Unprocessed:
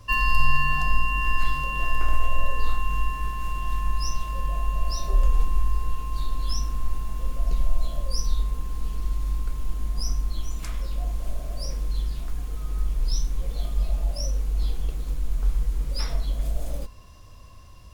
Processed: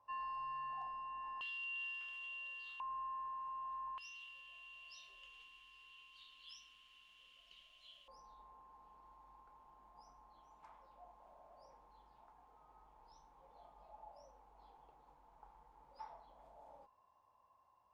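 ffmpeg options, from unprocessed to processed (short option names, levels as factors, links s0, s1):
-af "asetnsamples=n=441:p=0,asendcmd='1.41 bandpass f 3100;2.8 bandpass f 960;3.98 bandpass f 3000;8.08 bandpass f 870',bandpass=f=860:t=q:w=13:csg=0"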